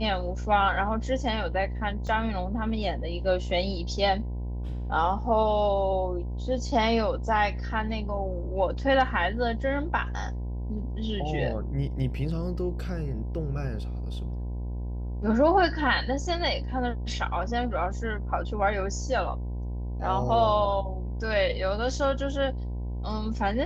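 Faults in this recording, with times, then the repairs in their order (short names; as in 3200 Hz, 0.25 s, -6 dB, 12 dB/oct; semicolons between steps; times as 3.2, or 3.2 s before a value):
buzz 60 Hz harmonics 17 -32 dBFS
2.07 gap 2.8 ms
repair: de-hum 60 Hz, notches 17; interpolate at 2.07, 2.8 ms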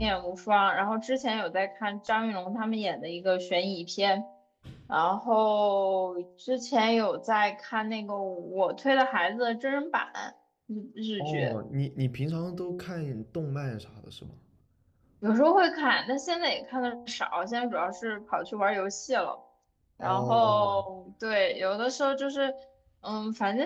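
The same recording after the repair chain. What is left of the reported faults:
none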